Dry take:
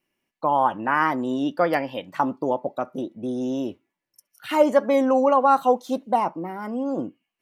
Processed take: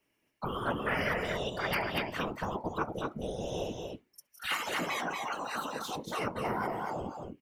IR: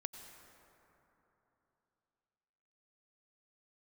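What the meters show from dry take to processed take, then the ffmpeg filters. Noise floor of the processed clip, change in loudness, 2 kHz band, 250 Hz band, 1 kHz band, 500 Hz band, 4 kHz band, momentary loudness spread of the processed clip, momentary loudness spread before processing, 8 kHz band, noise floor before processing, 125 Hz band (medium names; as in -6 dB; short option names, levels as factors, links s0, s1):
-77 dBFS, -11.5 dB, -3.0 dB, -14.0 dB, -13.0 dB, -13.5 dB, +2.0 dB, 7 LU, 12 LU, no reading, -85 dBFS, -0.5 dB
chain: -af "afftfilt=real='re*lt(hypot(re,im),0.178)':imag='im*lt(hypot(re,im),0.178)':win_size=1024:overlap=0.75,afftfilt=real='hypot(re,im)*cos(2*PI*random(0))':imag='hypot(re,im)*sin(2*PI*random(1))':win_size=512:overlap=0.75,aecho=1:1:235:0.596,volume=2.24"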